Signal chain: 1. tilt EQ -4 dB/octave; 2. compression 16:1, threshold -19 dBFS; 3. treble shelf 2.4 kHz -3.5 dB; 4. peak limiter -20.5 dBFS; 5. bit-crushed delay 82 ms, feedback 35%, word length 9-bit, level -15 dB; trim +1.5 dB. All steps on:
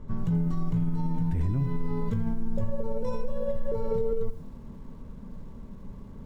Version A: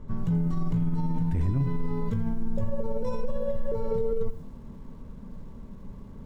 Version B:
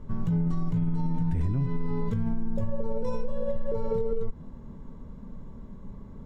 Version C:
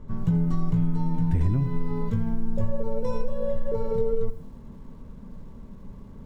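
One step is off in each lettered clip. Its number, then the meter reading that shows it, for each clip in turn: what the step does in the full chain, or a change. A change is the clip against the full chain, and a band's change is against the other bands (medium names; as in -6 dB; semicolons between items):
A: 2, mean gain reduction 3.5 dB; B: 5, crest factor change -1.5 dB; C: 4, mean gain reduction 2.0 dB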